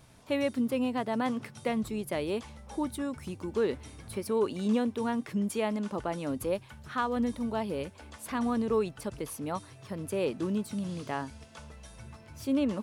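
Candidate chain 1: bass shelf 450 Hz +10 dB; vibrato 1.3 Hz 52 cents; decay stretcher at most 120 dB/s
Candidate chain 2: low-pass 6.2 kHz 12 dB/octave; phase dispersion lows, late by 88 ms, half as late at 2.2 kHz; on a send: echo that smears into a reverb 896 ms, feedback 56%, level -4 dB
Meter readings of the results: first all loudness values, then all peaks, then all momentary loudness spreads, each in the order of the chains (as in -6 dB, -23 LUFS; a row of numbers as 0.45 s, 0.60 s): -26.0 LUFS, -31.0 LUFS; -12.0 dBFS, -16.0 dBFS; 12 LU, 7 LU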